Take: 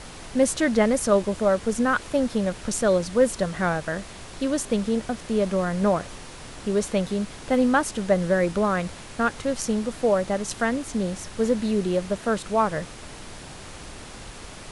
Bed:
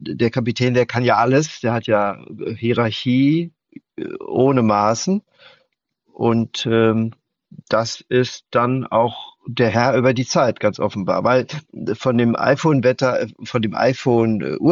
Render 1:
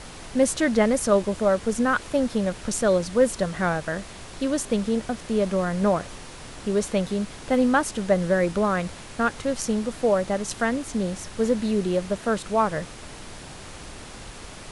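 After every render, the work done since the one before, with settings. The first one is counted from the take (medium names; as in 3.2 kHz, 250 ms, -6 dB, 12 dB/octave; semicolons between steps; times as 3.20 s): no audible change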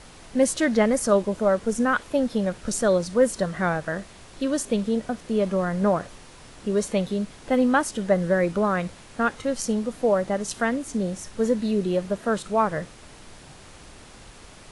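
noise print and reduce 6 dB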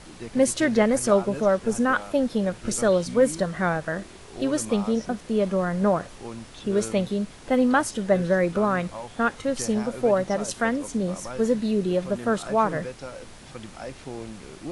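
add bed -21 dB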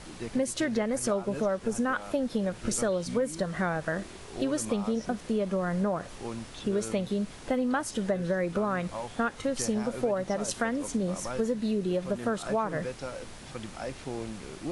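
compression, threshold -25 dBFS, peak gain reduction 11 dB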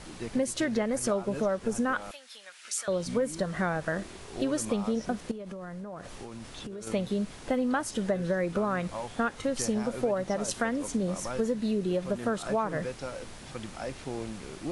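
2.11–2.88 s: Chebyshev high-pass 2.1 kHz; 5.31–6.87 s: compression 12:1, threshold -36 dBFS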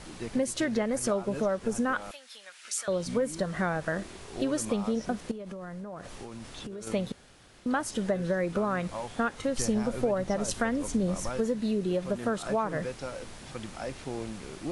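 7.12–7.66 s: room tone; 9.58–11.29 s: bass shelf 99 Hz +10.5 dB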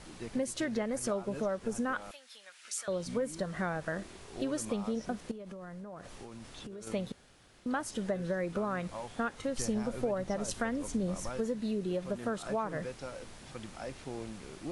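trim -5 dB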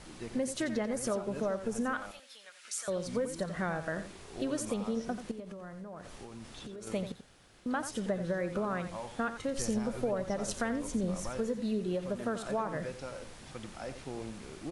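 delay 88 ms -10.5 dB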